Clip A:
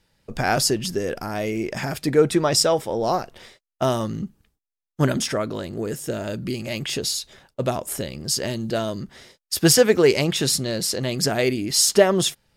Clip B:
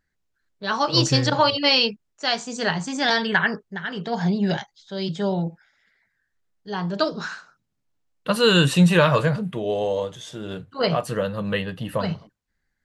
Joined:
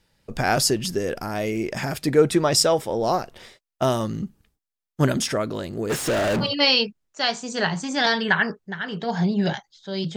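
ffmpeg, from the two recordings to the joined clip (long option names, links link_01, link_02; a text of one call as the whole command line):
ffmpeg -i cue0.wav -i cue1.wav -filter_complex "[0:a]asplit=3[link_01][link_02][link_03];[link_01]afade=type=out:start_time=5.89:duration=0.02[link_04];[link_02]asplit=2[link_05][link_06];[link_06]highpass=frequency=720:poles=1,volume=37dB,asoftclip=type=tanh:threshold=-15.5dB[link_07];[link_05][link_07]amix=inputs=2:normalize=0,lowpass=frequency=3000:poles=1,volume=-6dB,afade=type=in:start_time=5.89:duration=0.02,afade=type=out:start_time=6.48:duration=0.02[link_08];[link_03]afade=type=in:start_time=6.48:duration=0.02[link_09];[link_04][link_08][link_09]amix=inputs=3:normalize=0,apad=whole_dur=10.16,atrim=end=10.16,atrim=end=6.48,asetpts=PTS-STARTPTS[link_10];[1:a]atrim=start=1.44:end=5.2,asetpts=PTS-STARTPTS[link_11];[link_10][link_11]acrossfade=duration=0.08:curve1=tri:curve2=tri" out.wav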